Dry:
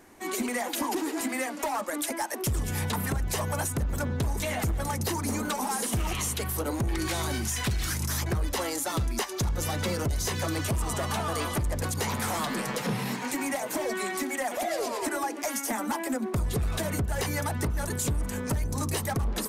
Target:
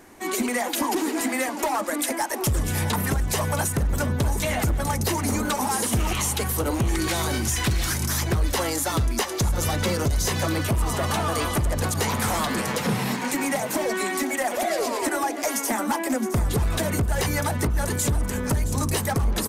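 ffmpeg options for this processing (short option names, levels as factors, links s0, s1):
-filter_complex "[0:a]asettb=1/sr,asplit=3[s0][s1][s2];[s0]atrim=end=10.484[s3];[s1]atrim=start=10.48:end=11.04,asetpts=PTS-STARTPTS,afade=t=in:d=0.004:c=qsin,afade=t=out:st=0.556:d=0.004:c=qsin,equalizer=f=7000:t=o:w=1.1:g=-5.5[s4];[s2]atrim=start=11.036[s5];[s3][s4]acrossfade=d=0.004:c1=hsin:c2=qsin[s6];[s6][s5]acrossfade=d=0.004:c1=qsin:c2=hsin,aecho=1:1:669:0.237,volume=1.78"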